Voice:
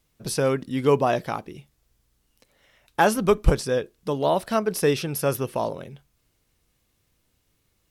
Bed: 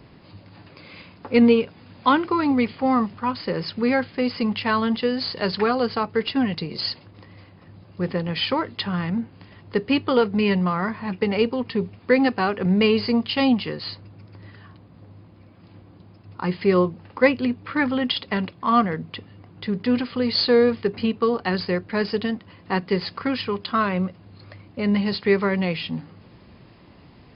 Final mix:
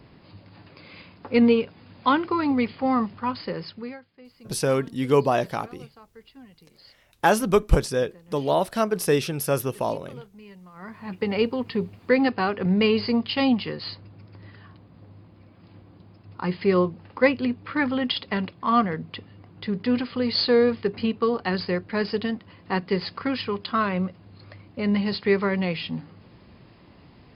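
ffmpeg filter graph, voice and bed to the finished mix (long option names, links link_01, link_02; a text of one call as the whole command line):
ffmpeg -i stem1.wav -i stem2.wav -filter_complex "[0:a]adelay=4250,volume=0dB[link_01];[1:a]volume=21.5dB,afade=type=out:start_time=3.35:duration=0.65:silence=0.0668344,afade=type=in:start_time=10.73:duration=0.64:silence=0.0630957[link_02];[link_01][link_02]amix=inputs=2:normalize=0" out.wav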